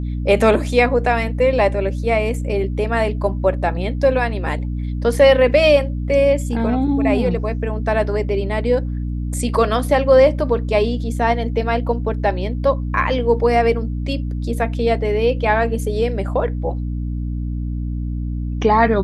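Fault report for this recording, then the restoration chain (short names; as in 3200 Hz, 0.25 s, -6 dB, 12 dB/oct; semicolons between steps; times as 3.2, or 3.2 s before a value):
hum 60 Hz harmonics 5 -23 dBFS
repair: de-hum 60 Hz, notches 5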